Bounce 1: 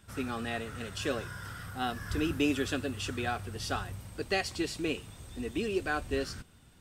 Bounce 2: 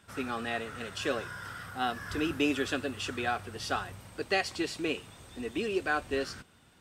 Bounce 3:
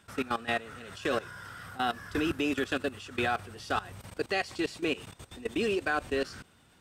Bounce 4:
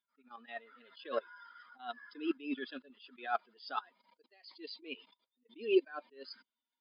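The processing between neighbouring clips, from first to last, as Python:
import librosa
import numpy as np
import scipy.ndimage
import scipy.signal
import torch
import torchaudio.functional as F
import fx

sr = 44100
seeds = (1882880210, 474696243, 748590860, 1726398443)

y1 = fx.highpass(x, sr, hz=1000.0, slope=6)
y1 = fx.tilt_eq(y1, sr, slope=-2.5)
y1 = F.gain(torch.from_numpy(y1), 6.0).numpy()
y2 = fx.level_steps(y1, sr, step_db=17)
y2 = F.gain(torch.from_numpy(y2), 6.0).numpy()
y3 = fx.bin_expand(y2, sr, power=2.0)
y3 = fx.brickwall_bandpass(y3, sr, low_hz=220.0, high_hz=5100.0)
y3 = fx.attack_slew(y3, sr, db_per_s=160.0)
y3 = F.gain(torch.from_numpy(y3), 8.0).numpy()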